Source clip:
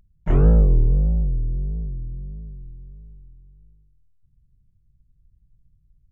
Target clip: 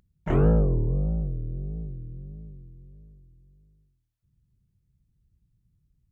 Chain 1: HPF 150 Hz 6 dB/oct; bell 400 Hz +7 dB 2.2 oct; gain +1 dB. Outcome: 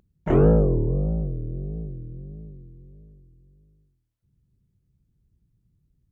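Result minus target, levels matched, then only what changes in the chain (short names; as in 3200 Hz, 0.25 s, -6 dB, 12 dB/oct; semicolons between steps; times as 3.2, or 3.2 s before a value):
500 Hz band +3.5 dB
remove: bell 400 Hz +7 dB 2.2 oct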